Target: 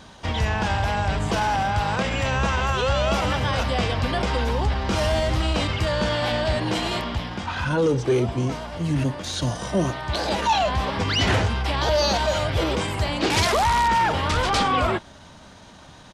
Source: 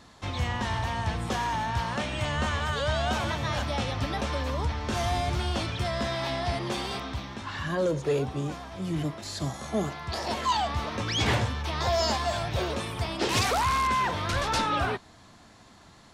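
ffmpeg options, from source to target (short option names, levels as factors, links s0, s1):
-filter_complex "[0:a]asetrate=39289,aresample=44100,atempo=1.12246,asplit=2[s0][s1];[s1]alimiter=limit=0.075:level=0:latency=1,volume=1.12[s2];[s0][s2]amix=inputs=2:normalize=0,volume=1.12"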